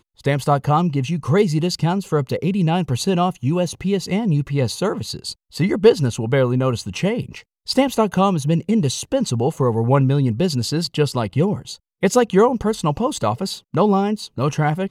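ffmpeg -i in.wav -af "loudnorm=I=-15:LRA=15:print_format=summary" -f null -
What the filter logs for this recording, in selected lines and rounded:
Input Integrated:    -19.5 LUFS
Input True Peak:      -1.1 dBTP
Input LRA:             1.0 LU
Input Threshold:     -29.6 LUFS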